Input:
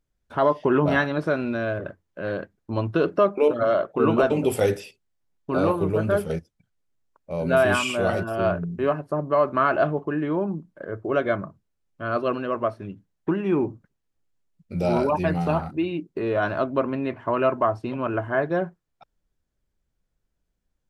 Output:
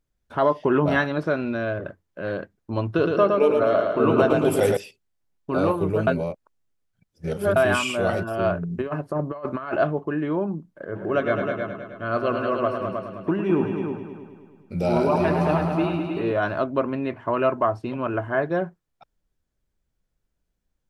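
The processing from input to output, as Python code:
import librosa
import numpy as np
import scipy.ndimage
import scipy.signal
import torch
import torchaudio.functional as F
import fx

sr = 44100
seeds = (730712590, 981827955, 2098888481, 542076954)

y = fx.peak_eq(x, sr, hz=10000.0, db=-12.5, octaves=0.52, at=(1.23, 1.83))
y = fx.echo_feedback(y, sr, ms=114, feedback_pct=53, wet_db=-4, at=(2.87, 4.77))
y = fx.over_compress(y, sr, threshold_db=-25.0, ratio=-0.5, at=(8.7, 9.74), fade=0.02)
y = fx.echo_heads(y, sr, ms=105, heads='all three', feedback_pct=42, wet_db=-8.5, at=(10.94, 16.32), fade=0.02)
y = fx.edit(y, sr, fx.reverse_span(start_s=6.07, length_s=1.49), tone=tone)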